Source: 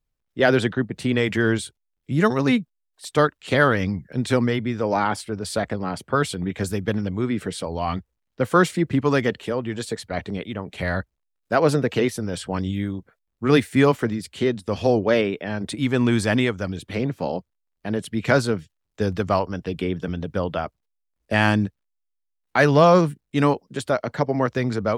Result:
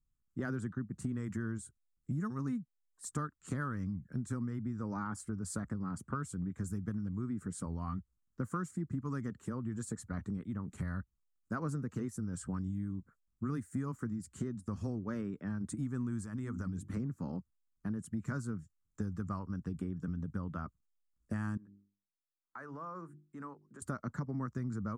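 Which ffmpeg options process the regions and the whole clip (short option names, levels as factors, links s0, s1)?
-filter_complex "[0:a]asettb=1/sr,asplit=3[s0][s1][s2];[s0]atrim=end=16.224[s3];[s1]atrim=start=16.22:end=16.97,asetpts=PTS-STARTPTS,afade=t=in:d=0.004:c=qsin,afade=t=out:st=0.746:d=0.004:c=qsin,bandreject=f=50:t=h:w=6,bandreject=f=100:t=h:w=6,bandreject=f=150:t=h:w=6,bandreject=f=200:t=h:w=6,bandreject=f=250:t=h:w=6,bandreject=f=300:t=h:w=6,bandreject=f=350:t=h:w=6,acompressor=threshold=0.0631:ratio=6:attack=3.2:release=140:knee=1:detection=peak[s4];[s2]atrim=start=16.966[s5];[s3][s4]acrossfade=d=0.004:c1=hsin:c2=qsin[s6];[s6][s5]acrossfade=d=0.004:c1=qsin:c2=hsin,asettb=1/sr,asplit=3[s7][s8][s9];[s7]atrim=end=21.574[s10];[s8]atrim=start=21.57:end=23.82,asetpts=PTS-STARTPTS,afade=t=in:d=0.004:c=qsin,afade=t=out:st=2.246:d=0.004:c=qsin,acrossover=split=350 2200:gain=0.126 1 0.224[s11][s12][s13];[s11][s12][s13]amix=inputs=3:normalize=0,bandreject=f=50:t=h:w=6,bandreject=f=100:t=h:w=6,bandreject=f=150:t=h:w=6,bandreject=f=200:t=h:w=6,bandreject=f=250:t=h:w=6,bandreject=f=300:t=h:w=6,bandreject=f=350:t=h:w=6,bandreject=f=400:t=h:w=6,acompressor=threshold=0.00708:ratio=2:attack=3.2:release=140:knee=1:detection=peak[s14];[s9]atrim=start=23.816[s15];[s10][s14]acrossfade=d=0.004:c1=hsin:c2=qsin[s16];[s16][s15]acrossfade=d=0.004:c1=qsin:c2=hsin,firequalizer=gain_entry='entry(220,0);entry(460,-16);entry(690,-20);entry(1200,-3);entry(2300,-23);entry(3400,-27);entry(7100,-1);entry(12000,-10)':delay=0.05:min_phase=1,acompressor=threshold=0.0224:ratio=6,volume=0.841"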